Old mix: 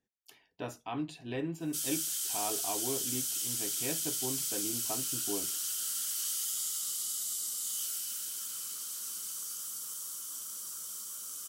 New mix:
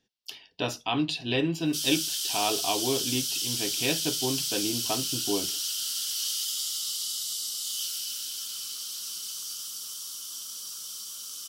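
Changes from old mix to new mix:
speech +8.5 dB
master: add flat-topped bell 3,900 Hz +11 dB 1.3 octaves

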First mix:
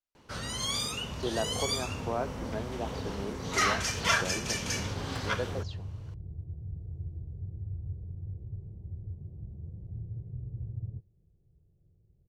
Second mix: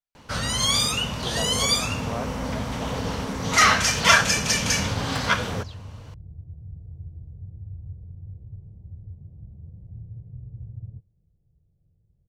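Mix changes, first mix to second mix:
first sound +10.5 dB
master: add parametric band 370 Hz −8.5 dB 0.43 octaves

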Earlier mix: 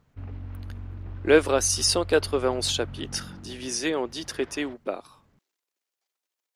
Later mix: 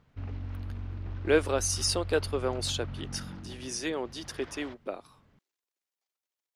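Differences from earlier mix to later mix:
speech −6.0 dB
background: add high-shelf EQ 3,800 Hz +10 dB

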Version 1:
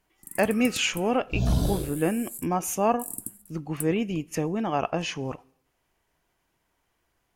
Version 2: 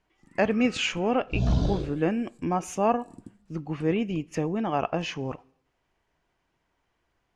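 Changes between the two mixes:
first sound: add high-frequency loss of the air 150 metres
master: add high-frequency loss of the air 89 metres

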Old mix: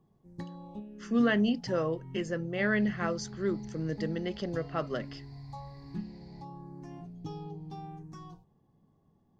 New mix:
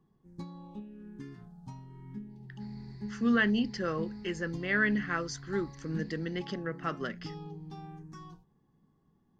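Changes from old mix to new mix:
speech: entry +2.10 s
master: add graphic EQ with 15 bands 100 Hz −6 dB, 630 Hz −9 dB, 1,600 Hz +5 dB

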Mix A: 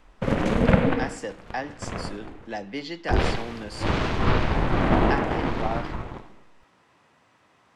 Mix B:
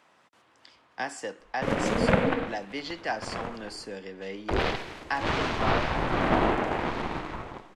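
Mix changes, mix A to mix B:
background: entry +1.40 s
master: add low-shelf EQ 240 Hz −9.5 dB

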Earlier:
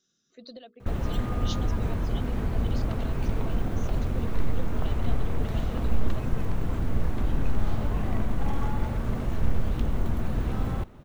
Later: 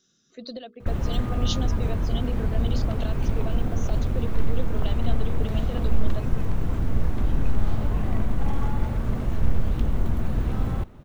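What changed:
speech +7.0 dB
master: add low-shelf EQ 210 Hz +3.5 dB

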